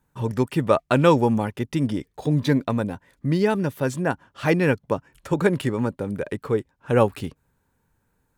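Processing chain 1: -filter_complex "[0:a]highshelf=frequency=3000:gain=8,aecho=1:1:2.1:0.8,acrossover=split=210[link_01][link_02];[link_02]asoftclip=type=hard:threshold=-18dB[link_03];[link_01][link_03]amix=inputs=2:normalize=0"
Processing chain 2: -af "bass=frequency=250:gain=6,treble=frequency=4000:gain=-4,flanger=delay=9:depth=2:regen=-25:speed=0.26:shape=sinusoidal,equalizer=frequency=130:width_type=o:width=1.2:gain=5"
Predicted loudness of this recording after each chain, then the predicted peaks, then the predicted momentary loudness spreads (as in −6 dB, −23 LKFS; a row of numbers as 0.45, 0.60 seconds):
−24.0, −22.0 LKFS; −12.0, −4.5 dBFS; 8, 9 LU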